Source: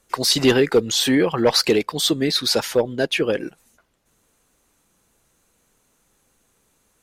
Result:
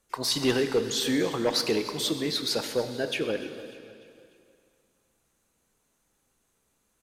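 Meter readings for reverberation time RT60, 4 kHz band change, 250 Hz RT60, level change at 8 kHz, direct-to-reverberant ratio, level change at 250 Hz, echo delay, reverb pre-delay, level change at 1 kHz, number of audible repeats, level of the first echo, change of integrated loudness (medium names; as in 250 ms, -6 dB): 2.4 s, -8.0 dB, 2.4 s, -8.0 dB, 7.5 dB, -8.0 dB, 297 ms, 7 ms, -8.5 dB, 3, -17.5 dB, -8.5 dB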